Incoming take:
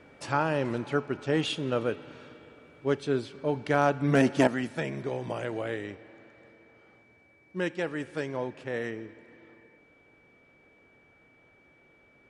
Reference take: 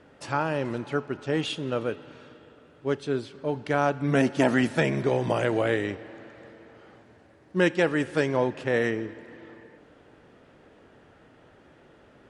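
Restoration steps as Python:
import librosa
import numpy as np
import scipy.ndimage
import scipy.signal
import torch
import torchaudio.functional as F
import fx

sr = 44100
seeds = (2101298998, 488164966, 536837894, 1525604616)

y = fx.fix_declip(x, sr, threshold_db=-11.0)
y = fx.notch(y, sr, hz=2300.0, q=30.0)
y = fx.fix_level(y, sr, at_s=4.47, step_db=8.5)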